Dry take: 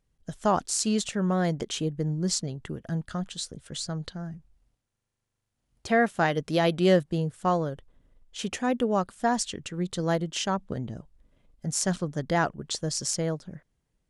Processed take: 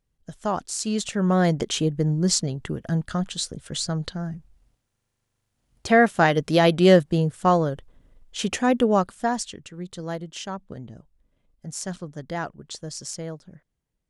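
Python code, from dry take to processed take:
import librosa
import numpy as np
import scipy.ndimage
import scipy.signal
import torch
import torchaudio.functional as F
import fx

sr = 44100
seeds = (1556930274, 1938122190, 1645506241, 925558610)

y = fx.gain(x, sr, db=fx.line((0.77, -2.0), (1.37, 6.0), (8.93, 6.0), (9.68, -5.0)))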